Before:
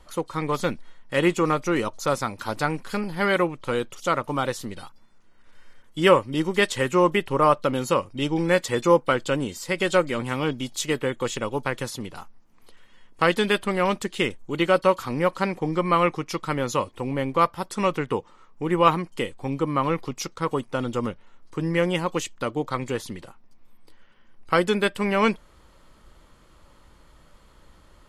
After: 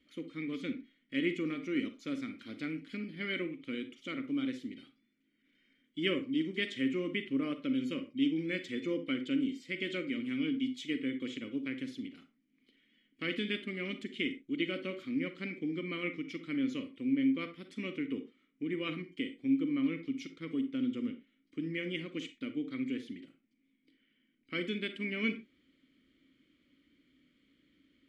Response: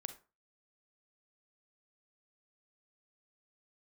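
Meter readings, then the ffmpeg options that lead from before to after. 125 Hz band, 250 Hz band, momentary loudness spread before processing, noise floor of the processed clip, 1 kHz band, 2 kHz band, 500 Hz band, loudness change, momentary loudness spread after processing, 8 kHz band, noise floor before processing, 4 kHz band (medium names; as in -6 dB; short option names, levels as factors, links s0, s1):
-16.5 dB, -5.5 dB, 10 LU, -75 dBFS, -28.5 dB, -11.0 dB, -18.0 dB, -11.5 dB, 9 LU, under -20 dB, -54 dBFS, -9.5 dB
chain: -filter_complex "[0:a]asplit=3[s0][s1][s2];[s0]bandpass=f=270:t=q:w=8,volume=1[s3];[s1]bandpass=f=2290:t=q:w=8,volume=0.501[s4];[s2]bandpass=f=3010:t=q:w=8,volume=0.355[s5];[s3][s4][s5]amix=inputs=3:normalize=0[s6];[1:a]atrim=start_sample=2205,afade=t=out:st=0.19:d=0.01,atrim=end_sample=8820[s7];[s6][s7]afir=irnorm=-1:irlink=0,volume=1.68"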